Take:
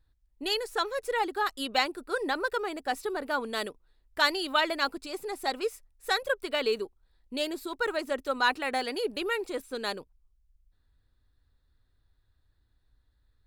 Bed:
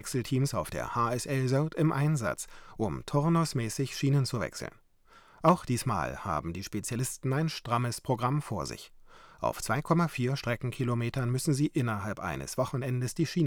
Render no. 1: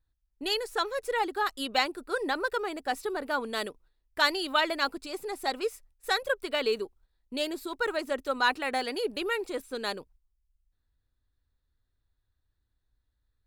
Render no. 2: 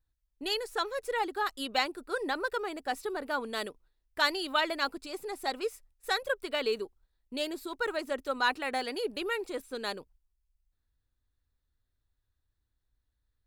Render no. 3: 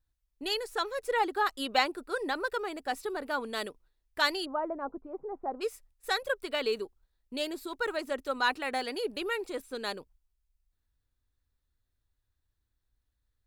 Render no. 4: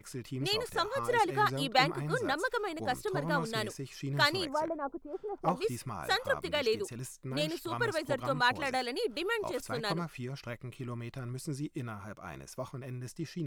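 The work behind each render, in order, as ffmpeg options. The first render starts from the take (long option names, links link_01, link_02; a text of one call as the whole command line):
ffmpeg -i in.wav -af "agate=range=-8dB:threshold=-57dB:ratio=16:detection=peak" out.wav
ffmpeg -i in.wav -af "volume=-2.5dB" out.wav
ffmpeg -i in.wav -filter_complex "[0:a]asettb=1/sr,asplit=3[link_01][link_02][link_03];[link_01]atrim=end=1.094[link_04];[link_02]atrim=start=1.09:end=2.04,asetpts=PTS-STARTPTS,afade=type=in:duration=0.004:curve=qsin,afade=type=out:start_time=0.946:duration=0.004:curve=qsin,equalizer=frequency=790:width=0.34:gain=3.5[link_05];[link_03]atrim=start=2.036[link_06];[link_04][link_05]acrossfade=duration=0.004:curve1=hsin:curve2=qsin[link_07];[link_07][link_06]acrossfade=duration=0.004:curve1=qsin:curve2=hsin,asplit=3[link_08][link_09][link_10];[link_08]afade=type=out:start_time=4.44:duration=0.02[link_11];[link_09]lowpass=frequency=1000:width=0.5412,lowpass=frequency=1000:width=1.3066,afade=type=in:start_time=4.44:duration=0.02,afade=type=out:start_time=5.6:duration=0.02[link_12];[link_10]afade=type=in:start_time=5.6:duration=0.02[link_13];[link_11][link_12][link_13]amix=inputs=3:normalize=0" out.wav
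ffmpeg -i in.wav -i bed.wav -filter_complex "[1:a]volume=-10dB[link_01];[0:a][link_01]amix=inputs=2:normalize=0" out.wav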